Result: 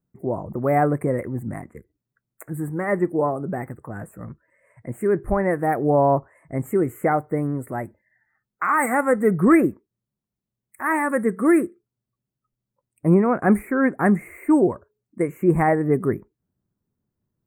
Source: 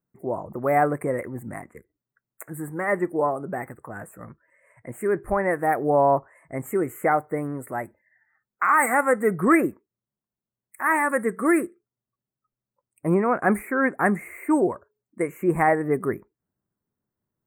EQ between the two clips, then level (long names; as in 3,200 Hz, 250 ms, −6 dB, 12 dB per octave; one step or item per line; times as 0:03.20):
low-shelf EQ 380 Hz +11.5 dB
−2.5 dB